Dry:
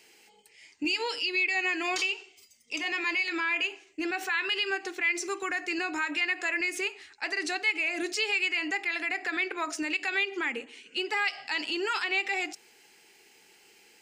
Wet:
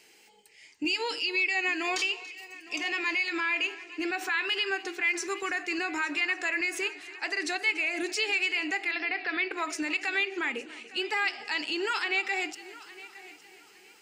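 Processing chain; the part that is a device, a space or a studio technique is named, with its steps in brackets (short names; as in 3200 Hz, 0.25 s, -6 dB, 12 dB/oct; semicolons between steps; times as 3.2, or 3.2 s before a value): multi-head tape echo (multi-head echo 0.287 s, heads first and third, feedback 43%, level -19 dB; wow and flutter 18 cents); 8.91–9.51 steep low-pass 5300 Hz 72 dB/oct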